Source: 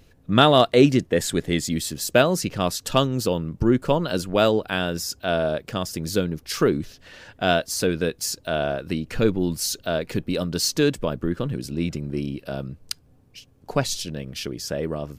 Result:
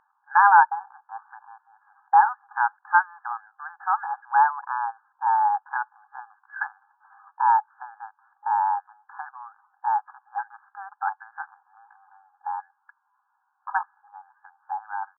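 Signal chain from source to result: brick-wall FIR band-pass 580–1300 Hz; pitch shift +5 st; gain +4 dB

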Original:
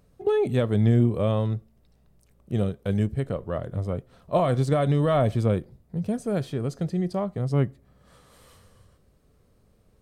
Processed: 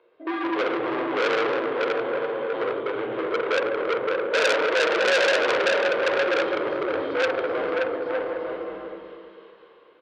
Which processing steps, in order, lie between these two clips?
regenerating reverse delay 0.127 s, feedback 62%, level -9.5 dB; bell 600 Hz +6 dB 0.29 oct; hard clip -21 dBFS, distortion -9 dB; bouncing-ball echo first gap 0.57 s, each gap 0.6×, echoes 5; reverb RT60 1.5 s, pre-delay 11 ms, DRR -1 dB; mistuned SSB -87 Hz 490–3500 Hz; core saturation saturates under 3500 Hz; gain +3.5 dB

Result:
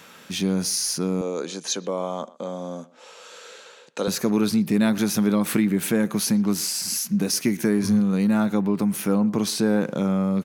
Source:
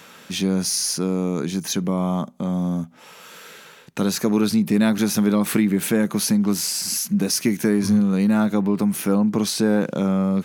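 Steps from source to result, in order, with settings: 1.21–4.08 speaker cabinet 380–8900 Hz, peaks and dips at 510 Hz +9 dB, 2000 Hz -4 dB, 4100 Hz +4 dB, 6900 Hz +4 dB; speakerphone echo 0.12 s, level -20 dB; gain -2 dB

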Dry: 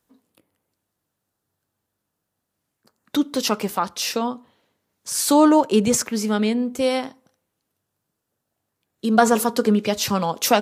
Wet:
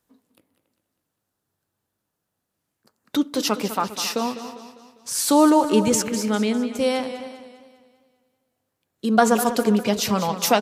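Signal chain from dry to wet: speakerphone echo 0.28 s, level -15 dB; warbling echo 0.2 s, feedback 47%, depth 64 cents, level -12 dB; gain -1 dB

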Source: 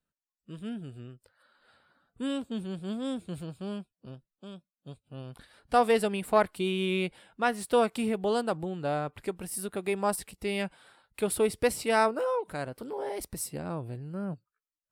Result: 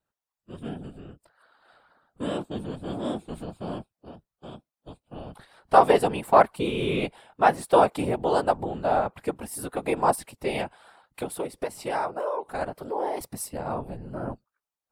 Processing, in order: whisperiser; 10.6–12.61 compressor 12:1, threshold -31 dBFS, peak gain reduction 13 dB; bell 810 Hz +10 dB 1.3 oct

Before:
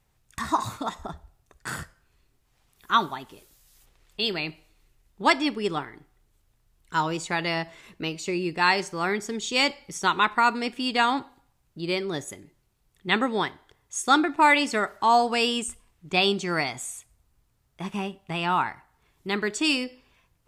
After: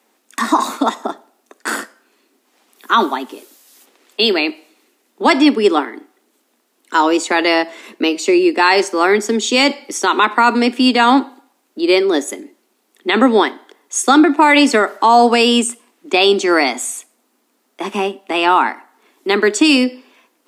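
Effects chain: steep high-pass 230 Hz 72 dB/oct; low shelf 470 Hz +7.5 dB; maximiser +13 dB; gain -1 dB

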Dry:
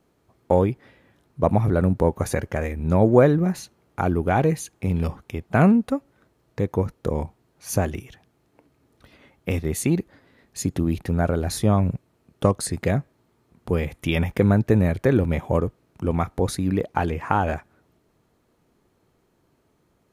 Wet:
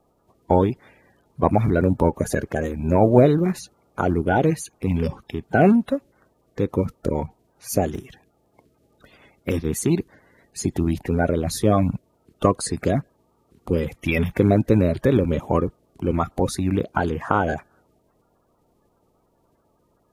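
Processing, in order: bin magnitudes rounded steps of 30 dB; 7.95–9.5 Doppler distortion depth 0.24 ms; gain +1.5 dB

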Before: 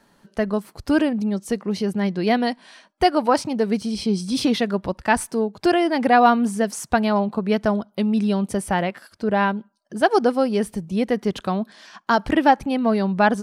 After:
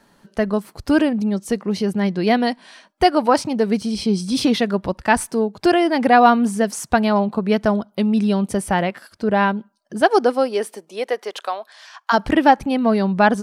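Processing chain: 10.07–12.12 HPF 240 Hz -> 780 Hz 24 dB/oct; gain +2.5 dB

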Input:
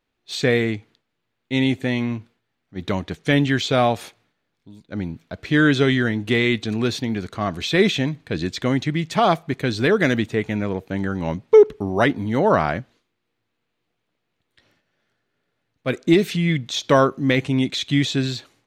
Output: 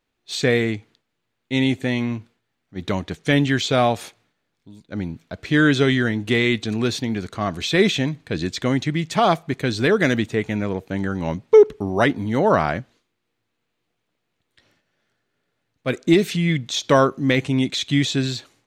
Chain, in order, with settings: bell 7500 Hz +3.5 dB 0.99 oct

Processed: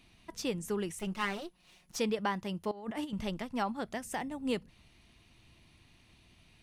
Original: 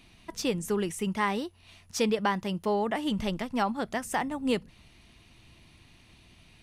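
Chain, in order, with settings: 0.99–1.96 minimum comb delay 5.5 ms; 2.71–3.13 negative-ratio compressor -33 dBFS, ratio -0.5; 3.93–4.4 dynamic EQ 1200 Hz, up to -7 dB, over -43 dBFS, Q 1.6; gain -5.5 dB

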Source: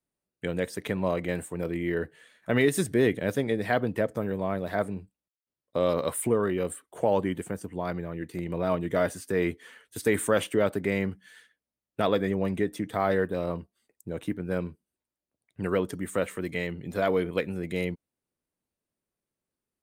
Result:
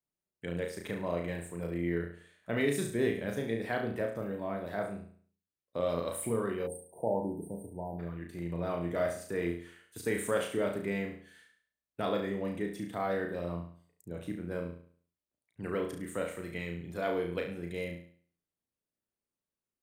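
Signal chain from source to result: flutter echo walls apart 6 m, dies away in 0.5 s; spectral delete 6.67–7.99, 990–8300 Hz; gain -8.5 dB

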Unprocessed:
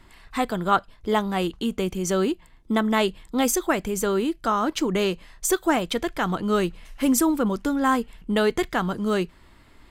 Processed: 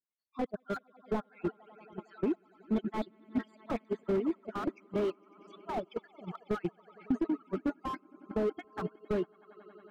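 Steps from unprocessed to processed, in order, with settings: random spectral dropouts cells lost 57%; speaker cabinet 190–3100 Hz, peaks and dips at 920 Hz -4 dB, 1800 Hz -6 dB, 2900 Hz -8 dB; spectral noise reduction 28 dB; 4.79–6.2 low shelf 450 Hz -4 dB; swelling echo 92 ms, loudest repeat 5, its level -15 dB; compressor 10:1, threshold -24 dBFS, peak gain reduction 7.5 dB; gate -28 dBFS, range -16 dB; reverb removal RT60 0.73 s; slew limiter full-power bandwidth 19 Hz

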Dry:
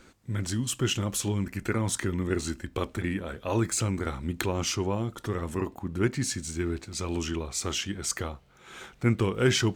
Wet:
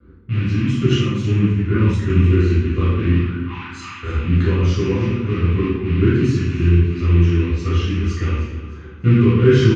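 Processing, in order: rattling part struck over -35 dBFS, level -20 dBFS; reverb removal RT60 0.75 s; 3.13–4.03 Chebyshev high-pass 780 Hz, order 8; low-pass opened by the level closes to 1600 Hz, open at -22.5 dBFS; dynamic EQ 1600 Hz, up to +4 dB, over -42 dBFS, Q 0.75; vibrato 0.31 Hz 6.3 cents; air absorption 60 m; feedback echo 0.308 s, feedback 36%, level -14 dB; reverb RT60 1.1 s, pre-delay 3 ms, DRR -10.5 dB; 0.89–2.1 three-band expander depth 100%; gain -16 dB

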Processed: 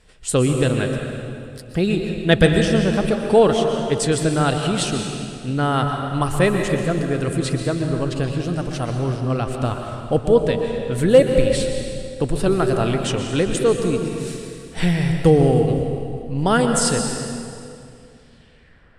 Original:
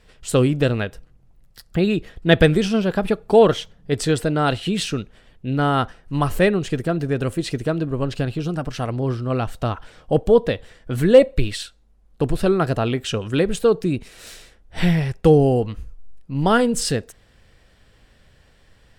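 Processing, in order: low-pass sweep 9400 Hz -> 1400 Hz, 18–18.86; on a send: reverb RT60 2.5 s, pre-delay 0.115 s, DRR 3.5 dB; on the sum: gain -1 dB

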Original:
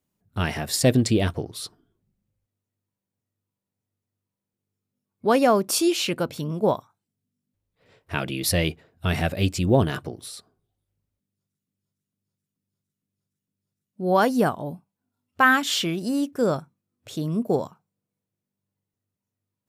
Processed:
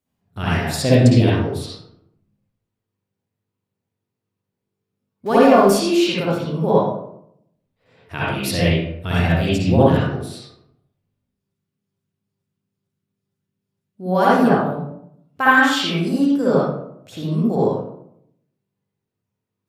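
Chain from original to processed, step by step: 5.26–5.74 zero-crossing step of -32 dBFS; reverb RT60 0.75 s, pre-delay 52 ms, DRR -8.5 dB; gain -3.5 dB

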